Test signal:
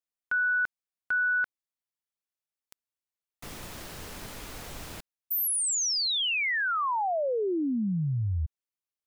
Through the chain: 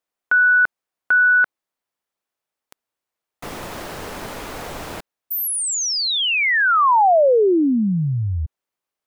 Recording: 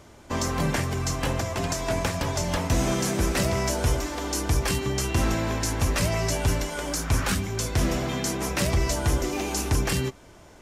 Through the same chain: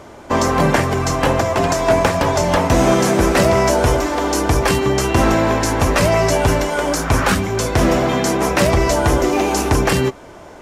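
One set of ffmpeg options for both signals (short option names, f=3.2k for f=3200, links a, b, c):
-af "equalizer=f=680:w=0.33:g=10,volume=4.5dB"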